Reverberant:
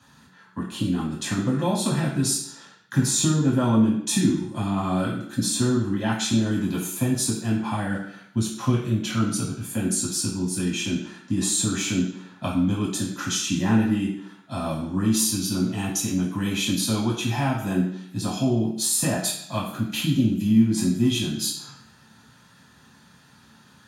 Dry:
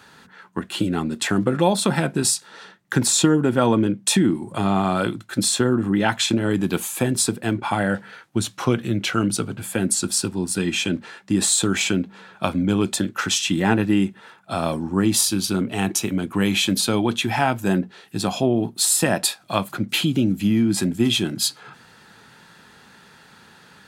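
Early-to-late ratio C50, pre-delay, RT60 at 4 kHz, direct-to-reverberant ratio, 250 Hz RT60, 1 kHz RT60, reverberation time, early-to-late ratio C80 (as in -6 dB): 5.0 dB, 3 ms, 0.65 s, -4.5 dB, 0.70 s, 0.65 s, 0.70 s, 8.0 dB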